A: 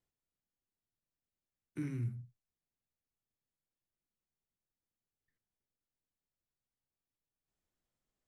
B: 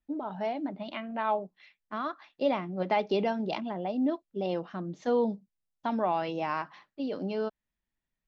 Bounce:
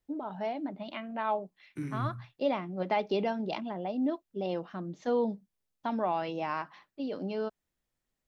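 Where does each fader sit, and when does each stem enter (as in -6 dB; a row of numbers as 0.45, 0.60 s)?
+2.0, -2.0 dB; 0.00, 0.00 s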